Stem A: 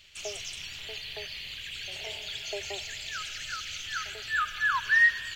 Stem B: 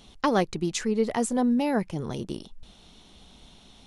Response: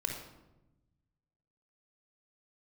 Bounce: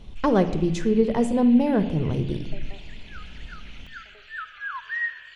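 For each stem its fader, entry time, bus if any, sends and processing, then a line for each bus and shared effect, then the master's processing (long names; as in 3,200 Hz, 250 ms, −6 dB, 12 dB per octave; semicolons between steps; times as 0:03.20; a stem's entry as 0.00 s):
−7.5 dB, 0.00 s, send −13 dB, three-way crossover with the lows and the highs turned down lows −12 dB, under 340 Hz, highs −20 dB, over 3,200 Hz; tape wow and flutter 69 cents
−3.0 dB, 0.00 s, send −7.5 dB, spectral tilt −3 dB per octave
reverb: on, RT60 0.95 s, pre-delay 26 ms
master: no processing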